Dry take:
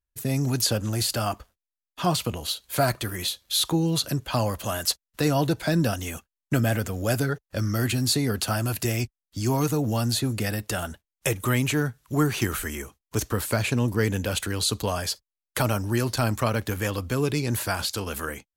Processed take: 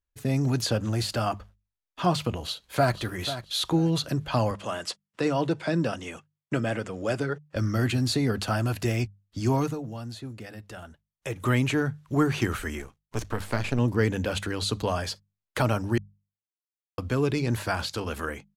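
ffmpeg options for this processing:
-filter_complex "[0:a]asplit=2[a][b];[b]afade=t=in:st=2.38:d=0.01,afade=t=out:st=2.95:d=0.01,aecho=0:1:490|980|1470:0.251189|0.0627972|0.0156993[c];[a][c]amix=inputs=2:normalize=0,asettb=1/sr,asplit=3[d][e][f];[d]atrim=end=4.514[g];[e]atrim=start=4.51:end=7.56,asetpts=PTS-STARTPTS,afade=t=in:d=0.004:c=qsin,afade=t=out:st=3.046:d=0.004:c=qsin,highpass=180,equalizer=f=250:t=q:w=4:g=-5,equalizer=f=720:t=q:w=4:g=-4,equalizer=f=1.6k:t=q:w=4:g=-3,equalizer=f=4.1k:t=q:w=4:g=-5,equalizer=f=6.3k:t=q:w=4:g=-4,lowpass=f=9.2k:w=0.5412,lowpass=f=9.2k:w=1.3066[h];[f]atrim=start=7.556[i];[g][h]acrossfade=d=0.004:c1=hsin:c2=qsin[j];[j][i]acrossfade=d=0.004:c1=qsin:c2=hsin,asettb=1/sr,asplit=3[k][l][m];[k]atrim=end=12.794[n];[l]atrim=start=12.79:end=13.79,asetpts=PTS-STARTPTS,afade=t=in:d=0.004:c=qsin,afade=t=out:st=0.996:d=0.004:c=qsin,aeval=exprs='if(lt(val(0),0),0.251*val(0),val(0))':c=same[o];[m]atrim=start=13.786[p];[n][o]acrossfade=d=0.004:c1=hsin:c2=qsin[q];[q][p]acrossfade=d=0.004:c1=qsin:c2=hsin,asplit=5[r][s][t][u][v];[r]atrim=end=9.92,asetpts=PTS-STARTPTS,afade=t=out:st=9.58:d=0.34:c=qua:silence=0.251189[w];[s]atrim=start=9.92:end=11.12,asetpts=PTS-STARTPTS,volume=-12dB[x];[t]atrim=start=11.12:end=15.98,asetpts=PTS-STARTPTS,afade=t=in:d=0.34:c=qua:silence=0.251189,afade=t=out:st=4.856:d=0.004:c=hsin[y];[u]atrim=start=15.98:end=16.98,asetpts=PTS-STARTPTS,volume=0[z];[v]atrim=start=16.98,asetpts=PTS-STARTPTS,afade=t=in:d=0.004:c=hsin[aa];[w][x][y][z][aa]concat=n=5:v=0:a=1,aemphasis=mode=reproduction:type=50fm,bandreject=f=50:t=h:w=6,bandreject=f=100:t=h:w=6,bandreject=f=150:t=h:w=6,bandreject=f=200:t=h:w=6"

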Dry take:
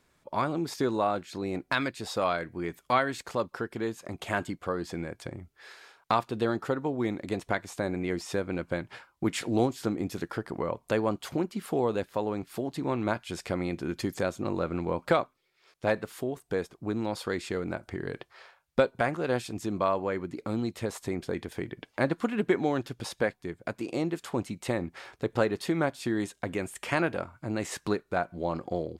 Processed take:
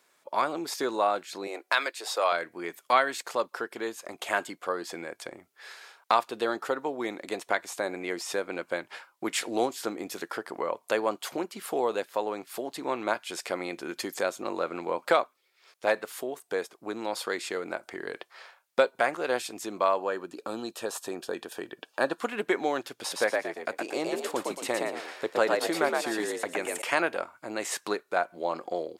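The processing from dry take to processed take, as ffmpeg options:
-filter_complex "[0:a]asettb=1/sr,asplit=3[a][b][c];[a]atrim=end=1.474[d];[b]atrim=start=1.47:end=2.32,asetpts=PTS-STARTPTS,afade=t=in:d=0.004:c=qsin,afade=t=out:st=0.846:d=0.004:c=qsin,highpass=f=360:w=0.5412,highpass=f=360:w=1.3066[e];[c]atrim=start=2.316[f];[d][e]acrossfade=d=0.004:c1=hsin:c2=qsin[g];[g][f]acrossfade=d=0.004:c1=qsin:c2=hsin,asettb=1/sr,asplit=3[h][i][j];[h]atrim=end=19.974[k];[i]atrim=start=19.97:end=22.2,asetpts=PTS-STARTPTS,afade=t=in:d=0.004:c=qsin,afade=t=out:st=2.226:d=0.004:c=qsin,asuperstop=centerf=2100:order=4:qfactor=4.3[l];[j]atrim=start=22.196[m];[k][l]acrossfade=d=0.004:c1=hsin:c2=qsin[n];[n][m]acrossfade=d=0.004:c1=qsin:c2=hsin,asettb=1/sr,asplit=3[o][p][q];[o]atrim=end=23.004[r];[p]atrim=start=23:end=26.82,asetpts=PTS-STARTPTS,afade=t=in:d=0.004:c=qsin,afade=t=out:st=3.816:d=0.004:c=qsin,asplit=5[s][t][u][v][w];[t]adelay=116,afreqshift=66,volume=-3dB[x];[u]adelay=232,afreqshift=132,volume=-12.9dB[y];[v]adelay=348,afreqshift=198,volume=-22.8dB[z];[w]adelay=464,afreqshift=264,volume=-32.7dB[aa];[s][x][y][z][aa]amix=inputs=5:normalize=0,atrim=end_sample=168462[ab];[q]atrim=start=26.816[ac];[r][ab]acrossfade=d=0.004:c1=hsin:c2=qsin[ad];[ad][ac]acrossfade=d=0.004:c1=qsin:c2=hsin,highpass=460,highshelf=f=7.1k:g=5,volume=3dB"

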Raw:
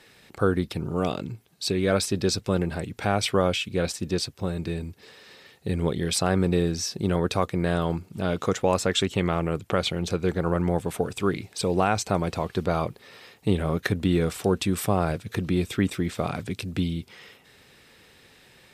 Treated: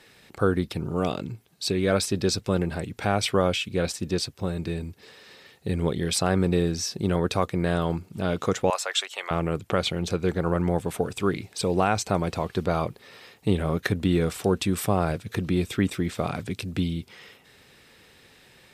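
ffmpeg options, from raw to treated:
-filter_complex "[0:a]asettb=1/sr,asplit=3[a][b][c];[a]atrim=end=8.704[d];[b]atrim=start=8.7:end=9.31,asetpts=PTS-STARTPTS,afade=t=in:d=0.004:c=qsin,afade=t=out:st=0.606:d=0.004:c=qsin,highpass=f=670:w=0.5412,highpass=f=670:w=1.3066[e];[c]atrim=start=9.306[f];[d][e]acrossfade=d=0.004:c1=hsin:c2=qsin[g];[g][f]acrossfade=d=0.004:c1=qsin:c2=hsin"

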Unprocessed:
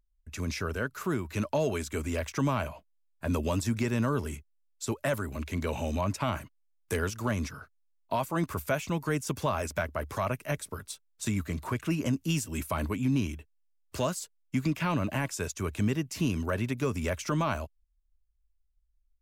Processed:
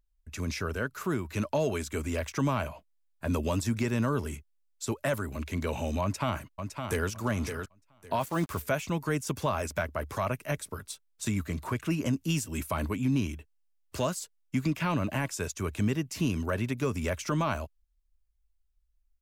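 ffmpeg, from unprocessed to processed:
-filter_complex "[0:a]asplit=2[a][b];[b]afade=t=in:st=6.02:d=0.01,afade=t=out:st=7.09:d=0.01,aecho=0:1:560|1120|1680:0.473151|0.0946303|0.0189261[c];[a][c]amix=inputs=2:normalize=0,asettb=1/sr,asplit=3[d][e][f];[d]atrim=end=8.214[g];[e]atrim=start=8.21:end=8.62,asetpts=PTS-STARTPTS,afade=t=in:d=0.004:c=qsin,afade=t=out:st=0.406:d=0.004:c=qsin,acrusher=bits=6:mix=0:aa=0.5[h];[f]atrim=start=8.616[i];[g][h]acrossfade=d=0.004:c1=hsin:c2=qsin[j];[j][i]acrossfade=d=0.004:c1=qsin:c2=hsin"

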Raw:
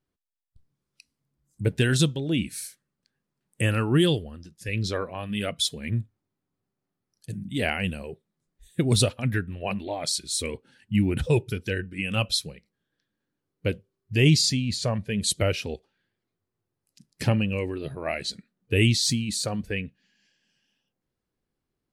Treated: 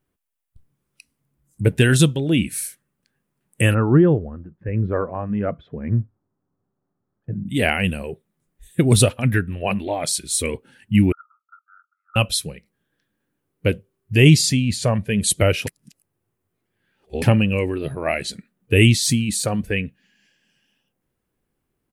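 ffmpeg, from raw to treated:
-filter_complex "[0:a]asplit=3[a][b][c];[a]afade=t=out:st=3.73:d=0.02[d];[b]lowpass=f=1.4k:w=0.5412,lowpass=f=1.4k:w=1.3066,afade=t=in:st=3.73:d=0.02,afade=t=out:st=7.46:d=0.02[e];[c]afade=t=in:st=7.46:d=0.02[f];[d][e][f]amix=inputs=3:normalize=0,asettb=1/sr,asplit=3[g][h][i];[g]atrim=end=11.124[j];[h]atrim=start=11.12:end=12.16,asetpts=PTS-STARTPTS,afade=t=in:d=0.004:c=qsin,afade=t=out:st=1.036:d=0.004:c=qsin,asuperpass=centerf=1300:order=8:qfactor=6.5[k];[i]atrim=start=12.156[l];[j][k]acrossfade=d=0.004:c1=hsin:c2=qsin[m];[m][l]acrossfade=d=0.004:c1=qsin:c2=hsin,asplit=3[n][o][p];[n]atrim=end=15.672[q];[o]atrim=start=15.668:end=17.222,asetpts=PTS-STARTPTS,areverse[r];[p]atrim=start=17.218[s];[q][r]acrossfade=d=0.004:c1=hsin:c2=hsin[t];[t][s]acrossfade=d=0.004:c1=hsin:c2=hsin,firequalizer=gain_entry='entry(2700,0);entry(4300,-7);entry(9900,3)':delay=0.05:min_phase=1,volume=7dB"

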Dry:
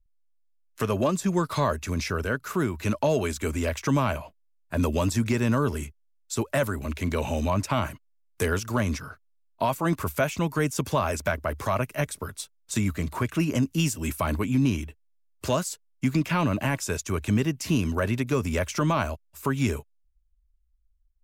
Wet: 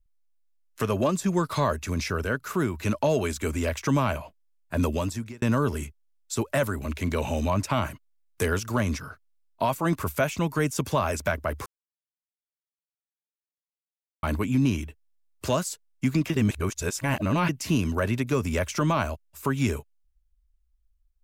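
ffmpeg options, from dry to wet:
-filter_complex "[0:a]asplit=6[a][b][c][d][e][f];[a]atrim=end=5.42,asetpts=PTS-STARTPTS,afade=t=out:st=4.84:d=0.58[g];[b]atrim=start=5.42:end=11.66,asetpts=PTS-STARTPTS,afade=t=in:d=0.004:c=hsin,afade=t=out:st=6.236:d=0.004:c=hsin[h];[c]atrim=start=11.66:end=14.23,asetpts=PTS-STARTPTS,volume=0[i];[d]atrim=start=14.23:end=16.302,asetpts=PTS-STARTPTS,afade=t=in:d=0.004:c=hsin[j];[e]atrim=start=16.298:end=17.492,asetpts=PTS-STARTPTS,areverse[k];[f]atrim=start=17.488[l];[g][h][i][j]concat=n=4:v=0:a=1[m];[m][k]acrossfade=d=0.004:c1=hsin:c2=hsin[n];[n][l]acrossfade=d=0.004:c1=hsin:c2=hsin"

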